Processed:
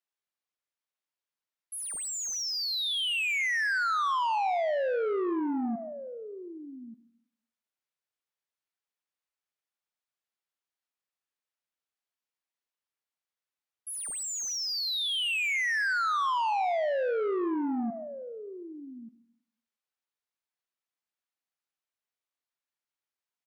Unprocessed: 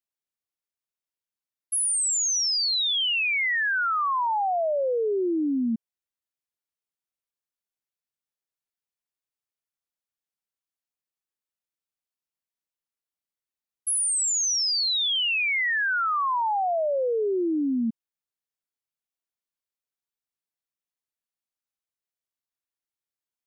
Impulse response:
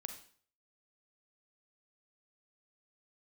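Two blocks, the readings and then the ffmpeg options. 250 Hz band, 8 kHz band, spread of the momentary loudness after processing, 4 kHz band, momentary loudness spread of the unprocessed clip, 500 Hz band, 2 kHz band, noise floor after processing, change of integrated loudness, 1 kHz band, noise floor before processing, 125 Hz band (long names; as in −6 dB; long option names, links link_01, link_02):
−5.0 dB, −10.0 dB, 17 LU, −6.0 dB, 5 LU, −3.5 dB, −3.5 dB, below −85 dBFS, −5.0 dB, −3.0 dB, below −85 dBFS, can't be measured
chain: -filter_complex "[0:a]aecho=1:1:1185:0.178,asplit=2[link_01][link_02];[link_02]highpass=frequency=720:poles=1,volume=12dB,asoftclip=type=tanh:threshold=-20dB[link_03];[link_01][link_03]amix=inputs=2:normalize=0,lowpass=frequency=2900:poles=1,volume=-6dB,asplit=2[link_04][link_05];[1:a]atrim=start_sample=2205,asetrate=29547,aresample=44100[link_06];[link_05][link_06]afir=irnorm=-1:irlink=0,volume=-4dB[link_07];[link_04][link_07]amix=inputs=2:normalize=0,volume=-7.5dB"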